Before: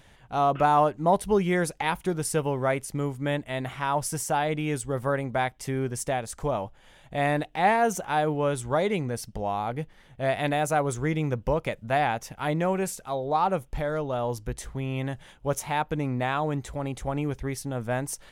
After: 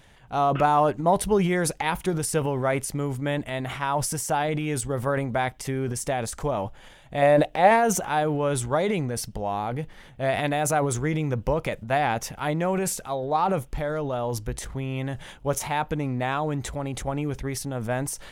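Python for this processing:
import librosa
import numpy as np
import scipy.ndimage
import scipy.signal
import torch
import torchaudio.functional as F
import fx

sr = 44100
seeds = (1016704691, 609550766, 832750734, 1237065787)

y = fx.peak_eq(x, sr, hz=570.0, db=12.5, octaves=0.38, at=(7.22, 7.71))
y = fx.transient(y, sr, attack_db=2, sustain_db=8)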